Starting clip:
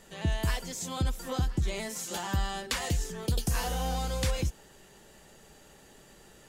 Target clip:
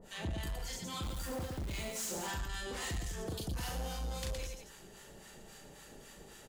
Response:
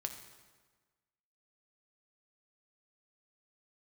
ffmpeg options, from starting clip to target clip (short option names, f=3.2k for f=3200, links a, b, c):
-filter_complex "[0:a]acompressor=threshold=-35dB:ratio=4,acrossover=split=830[a][b];[a]aeval=exprs='val(0)*(1-1/2+1/2*cos(2*PI*3.7*n/s))':c=same[c];[b]aeval=exprs='val(0)*(1-1/2-1/2*cos(2*PI*3.7*n/s))':c=same[d];[c][d]amix=inputs=2:normalize=0,aecho=1:1:37.9|116.6|207:0.708|0.562|0.316,asoftclip=type=tanh:threshold=-35.5dB,asettb=1/sr,asplit=3[e][f][g];[e]atrim=end=1.034[h];[f]atrim=start=1.03:end=2.31,asetpts=PTS-STARTPTS,afade=t=in:d=0.004:c=qsin,afade=t=out:st=1.276:d=0.004:c=qsin,acrusher=bits=2:mode=log:mix=0:aa=0.000001[i];[g]atrim=start=2.306[j];[h][i]acrossfade=d=0.004:c1=hsin:c2=qsin[k];[k][j]acrossfade=d=0.004:c1=qsin:c2=hsin,volume=3dB"